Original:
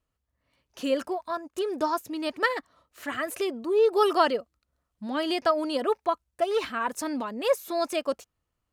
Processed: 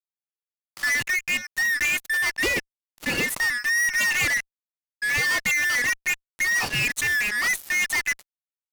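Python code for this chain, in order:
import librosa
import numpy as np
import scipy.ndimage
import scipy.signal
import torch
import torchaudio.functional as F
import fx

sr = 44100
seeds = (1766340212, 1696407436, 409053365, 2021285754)

y = fx.band_shuffle(x, sr, order='2143')
y = fx.fuzz(y, sr, gain_db=36.0, gate_db=-40.0)
y = y * librosa.db_to_amplitude(-7.5)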